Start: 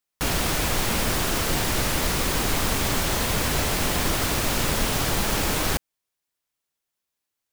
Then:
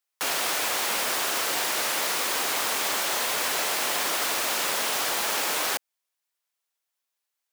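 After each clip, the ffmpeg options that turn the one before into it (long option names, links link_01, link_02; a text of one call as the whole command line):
ffmpeg -i in.wav -af "highpass=570" out.wav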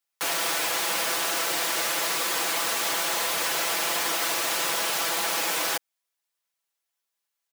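ffmpeg -i in.wav -af "aecho=1:1:6:0.67,volume=-1.5dB" out.wav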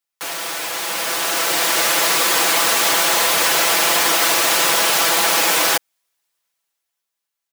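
ffmpeg -i in.wav -af "dynaudnorm=framelen=240:gausssize=11:maxgain=11.5dB" out.wav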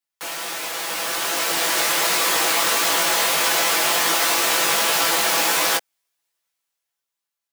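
ffmpeg -i in.wav -af "flanger=delay=17:depth=2.4:speed=1.4" out.wav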